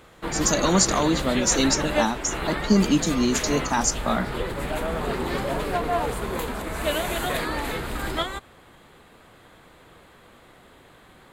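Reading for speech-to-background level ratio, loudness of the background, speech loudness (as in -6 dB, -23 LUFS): 5.0 dB, -28.0 LUFS, -23.0 LUFS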